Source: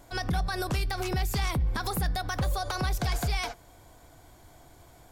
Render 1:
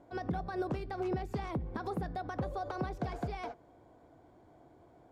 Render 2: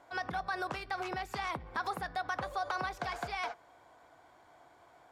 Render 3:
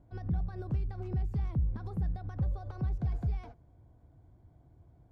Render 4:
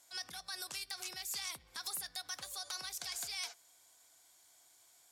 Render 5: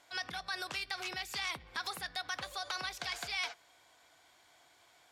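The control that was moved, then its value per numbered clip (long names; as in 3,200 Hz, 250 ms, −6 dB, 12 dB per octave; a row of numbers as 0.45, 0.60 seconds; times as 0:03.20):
resonant band-pass, frequency: 360, 1,100, 100, 7,700, 2,900 Hertz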